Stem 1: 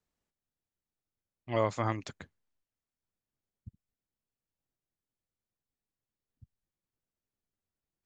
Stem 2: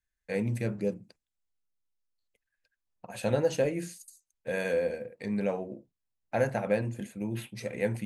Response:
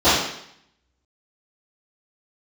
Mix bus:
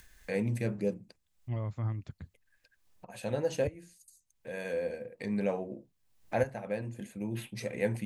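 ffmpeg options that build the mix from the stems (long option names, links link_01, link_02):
-filter_complex "[0:a]bass=frequency=250:gain=12,treble=frequency=4000:gain=-8,alimiter=limit=-18.5dB:level=0:latency=1:release=293,lowshelf=frequency=150:gain=11.5,volume=-11dB,asplit=2[link_01][link_02];[1:a]bandreject=frequency=1400:width=18,acompressor=mode=upward:threshold=-34dB:ratio=2.5,volume=-1dB[link_03];[link_02]apad=whole_len=355406[link_04];[link_03][link_04]sidechaincompress=threshold=-49dB:ratio=10:attack=16:release=1420[link_05];[link_01][link_05]amix=inputs=2:normalize=0"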